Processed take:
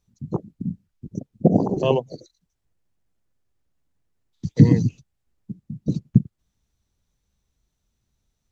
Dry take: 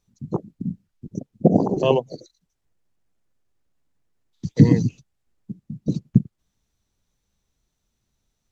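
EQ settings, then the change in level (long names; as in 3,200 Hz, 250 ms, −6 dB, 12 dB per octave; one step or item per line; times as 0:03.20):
parametric band 62 Hz +5.5 dB 2.4 octaves
−2.0 dB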